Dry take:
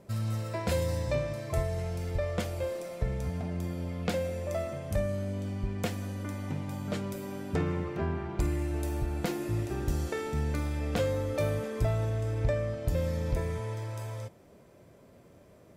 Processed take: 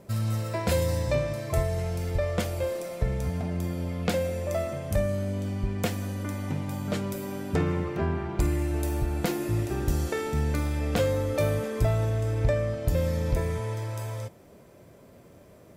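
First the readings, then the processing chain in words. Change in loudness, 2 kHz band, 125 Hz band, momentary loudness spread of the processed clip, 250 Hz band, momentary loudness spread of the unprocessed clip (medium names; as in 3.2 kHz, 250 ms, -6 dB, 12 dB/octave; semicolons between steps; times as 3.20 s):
+4.0 dB, +4.0 dB, +4.0 dB, 6 LU, +4.0 dB, 6 LU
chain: treble shelf 12 kHz +6.5 dB; trim +4 dB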